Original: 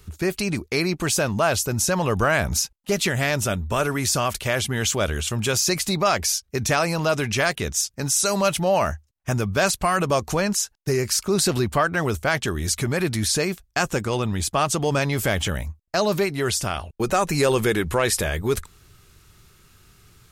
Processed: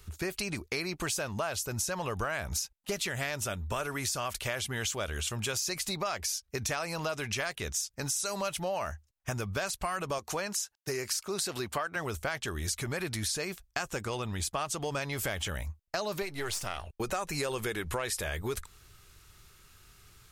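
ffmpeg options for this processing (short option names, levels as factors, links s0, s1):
-filter_complex "[0:a]asettb=1/sr,asplit=3[s0][s1][s2];[s0]atrim=end=10.184[s3];[s1]atrim=start=10.18:end=11.96,asetpts=PTS-STARTPTS,afade=t=in:d=0.004:c=qsin,afade=t=out:st=1.776:d=0.004:c=qsin,highpass=f=240:p=1[s4];[s2]atrim=start=11.956[s5];[s3][s4]acrossfade=d=0.004:c1=hsin:c2=qsin[s6];[s6][s5]acrossfade=d=0.004:c1=qsin:c2=hsin,asettb=1/sr,asplit=3[s7][s8][s9];[s7]atrim=end=16.224[s10];[s8]atrim=start=16.22:end=16.87,asetpts=PTS-STARTPTS,afade=t=in:d=0.004:c=qsin,afade=t=out:st=0.646:d=0.004:c=qsin,aeval=exprs='if(lt(val(0),0),0.447*val(0),val(0))':c=same[s11];[s9]atrim=start=16.866[s12];[s10][s11]acrossfade=d=0.004:c1=hsin:c2=qsin[s13];[s13][s12]acrossfade=d=0.004:c1=qsin:c2=hsin,equalizer=f=200:w=0.54:g=-7,acompressor=threshold=0.0398:ratio=5,volume=0.75"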